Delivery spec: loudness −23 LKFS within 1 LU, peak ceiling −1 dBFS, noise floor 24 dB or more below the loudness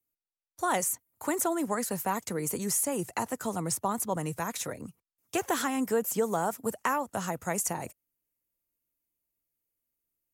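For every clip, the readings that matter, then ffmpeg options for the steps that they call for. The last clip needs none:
integrated loudness −31.0 LKFS; sample peak −16.5 dBFS; target loudness −23.0 LKFS
→ -af "volume=8dB"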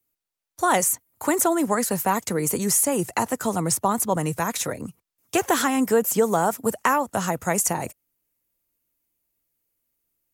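integrated loudness −23.0 LKFS; sample peak −8.5 dBFS; background noise floor −86 dBFS

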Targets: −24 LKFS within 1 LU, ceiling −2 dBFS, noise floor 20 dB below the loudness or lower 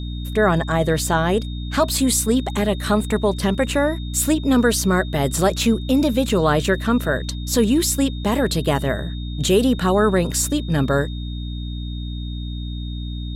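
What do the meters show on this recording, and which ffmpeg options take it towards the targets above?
mains hum 60 Hz; hum harmonics up to 300 Hz; level of the hum −25 dBFS; interfering tone 3,700 Hz; level of the tone −39 dBFS; integrated loudness −20.0 LKFS; sample peak −5.5 dBFS; target loudness −24.0 LKFS
→ -af "bandreject=frequency=60:width_type=h:width=4,bandreject=frequency=120:width_type=h:width=4,bandreject=frequency=180:width_type=h:width=4,bandreject=frequency=240:width_type=h:width=4,bandreject=frequency=300:width_type=h:width=4"
-af "bandreject=frequency=3700:width=30"
-af "volume=-4dB"

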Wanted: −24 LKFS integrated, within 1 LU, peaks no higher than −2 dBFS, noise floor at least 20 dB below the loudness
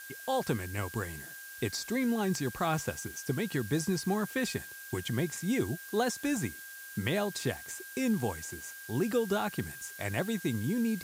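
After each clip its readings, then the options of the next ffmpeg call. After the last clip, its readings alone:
interfering tone 1,600 Hz; level of the tone −46 dBFS; background noise floor −47 dBFS; target noise floor −53 dBFS; integrated loudness −33.0 LKFS; sample peak −17.5 dBFS; target loudness −24.0 LKFS
→ -af "bandreject=frequency=1600:width=30"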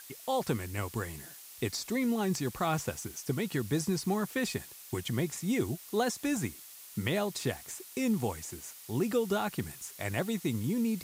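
interfering tone none found; background noise floor −50 dBFS; target noise floor −53 dBFS
→ -af "afftdn=noise_reduction=6:noise_floor=-50"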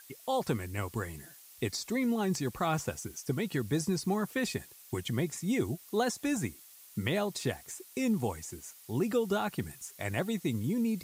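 background noise floor −55 dBFS; integrated loudness −33.5 LKFS; sample peak −17.0 dBFS; target loudness −24.0 LKFS
→ -af "volume=9.5dB"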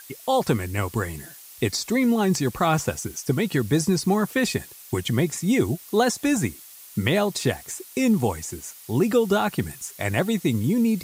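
integrated loudness −24.0 LKFS; sample peak −7.5 dBFS; background noise floor −45 dBFS

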